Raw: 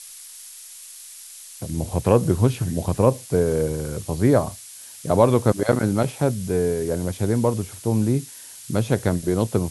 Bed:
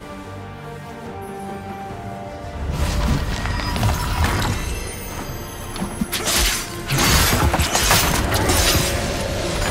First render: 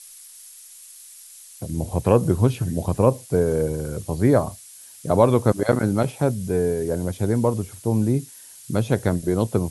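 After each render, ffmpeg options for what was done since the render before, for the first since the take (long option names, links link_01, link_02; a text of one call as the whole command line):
ffmpeg -i in.wav -af "afftdn=noise_reduction=6:noise_floor=-42" out.wav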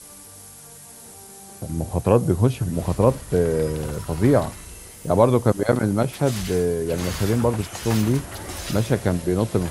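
ffmpeg -i in.wav -i bed.wav -filter_complex "[1:a]volume=-16dB[link_01];[0:a][link_01]amix=inputs=2:normalize=0" out.wav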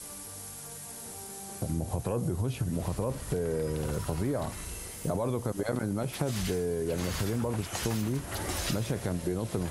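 ffmpeg -i in.wav -filter_complex "[0:a]acrossover=split=5800[link_01][link_02];[link_01]alimiter=limit=-14dB:level=0:latency=1:release=17[link_03];[link_03][link_02]amix=inputs=2:normalize=0,acompressor=threshold=-27dB:ratio=6" out.wav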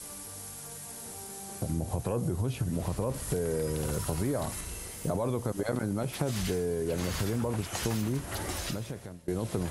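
ffmpeg -i in.wav -filter_complex "[0:a]asettb=1/sr,asplit=3[link_01][link_02][link_03];[link_01]atrim=end=3.144[link_04];[link_02]atrim=start=3.14:end=4.61,asetpts=PTS-STARTPTS,afade=type=in:duration=0.004:curve=qsin,afade=type=out:start_time=1.466:duration=0.004:curve=qsin,equalizer=frequency=11000:width_type=o:width=2:gain=6[link_05];[link_03]atrim=start=4.606[link_06];[link_04][link_05]acrossfade=duration=0.004:curve1=hsin:curve2=qsin[link_07];[link_07][link_06]acrossfade=duration=0.004:curve1=qsin:curve2=hsin,asplit=2[link_08][link_09];[link_08]atrim=end=9.28,asetpts=PTS-STARTPTS,afade=type=out:start_time=8.34:duration=0.94:silence=0.0707946[link_10];[link_09]atrim=start=9.28,asetpts=PTS-STARTPTS,afade=type=in:duration=0.004:curve=hsin:silence=0.0707946[link_11];[link_10][link_11]concat=n=2:v=0:a=1" out.wav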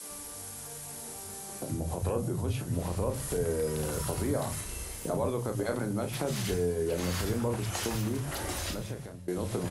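ffmpeg -i in.wav -filter_complex "[0:a]asplit=2[link_01][link_02];[link_02]adelay=34,volume=-7.5dB[link_03];[link_01][link_03]amix=inputs=2:normalize=0,acrossover=split=170[link_04][link_05];[link_04]adelay=90[link_06];[link_06][link_05]amix=inputs=2:normalize=0" out.wav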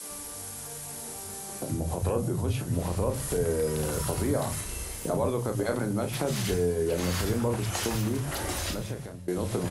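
ffmpeg -i in.wav -af "volume=3dB" out.wav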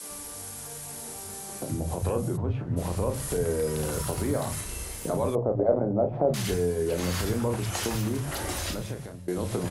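ffmpeg -i in.wav -filter_complex "[0:a]asplit=3[link_01][link_02][link_03];[link_01]afade=type=out:start_time=2.36:duration=0.02[link_04];[link_02]lowpass=1600,afade=type=in:start_time=2.36:duration=0.02,afade=type=out:start_time=2.76:duration=0.02[link_05];[link_03]afade=type=in:start_time=2.76:duration=0.02[link_06];[link_04][link_05][link_06]amix=inputs=3:normalize=0,asettb=1/sr,asplit=3[link_07][link_08][link_09];[link_07]atrim=end=4.024[link_10];[link_08]atrim=start=4.02:end=4.47,asetpts=PTS-STARTPTS,afade=type=in:duration=0.004:curve=qsin,afade=type=out:start_time=0.446:duration=0.004:curve=qsin,aeval=exprs='sgn(val(0))*max(abs(val(0))-0.00355,0)':channel_layout=same[link_11];[link_09]atrim=start=4.466[link_12];[link_10][link_11]acrossfade=duration=0.004:curve1=hsin:curve2=qsin[link_13];[link_13][link_12]acrossfade=duration=0.004:curve1=qsin:curve2=hsin,asettb=1/sr,asplit=3[link_14][link_15][link_16];[link_14]atrim=end=5.354[link_17];[link_15]atrim=start=5.35:end=6.34,asetpts=PTS-STARTPTS,afade=type=in:duration=0.004:curve=qsin,afade=type=out:start_time=0.986:duration=0.004:curve=qsin,lowpass=frequency=650:width_type=q:width=3.3[link_18];[link_16]atrim=start=6.336[link_19];[link_17][link_18]acrossfade=duration=0.004:curve1=hsin:curve2=qsin[link_20];[link_20][link_19]acrossfade=duration=0.004:curve1=qsin:curve2=hsin" out.wav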